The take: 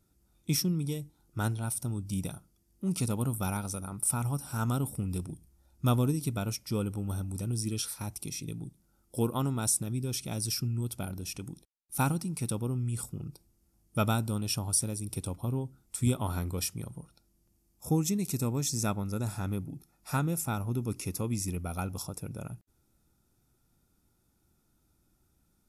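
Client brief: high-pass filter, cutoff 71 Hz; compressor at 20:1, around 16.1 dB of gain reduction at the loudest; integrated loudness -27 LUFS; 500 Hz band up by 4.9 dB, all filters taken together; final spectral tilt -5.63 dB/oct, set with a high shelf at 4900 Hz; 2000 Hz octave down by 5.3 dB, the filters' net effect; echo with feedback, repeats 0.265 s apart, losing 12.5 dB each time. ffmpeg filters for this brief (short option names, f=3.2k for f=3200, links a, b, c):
-af "highpass=71,equalizer=f=500:t=o:g=6.5,equalizer=f=2k:t=o:g=-8,highshelf=f=4.9k:g=-7,acompressor=threshold=-36dB:ratio=20,aecho=1:1:265|530|795:0.237|0.0569|0.0137,volume=15.5dB"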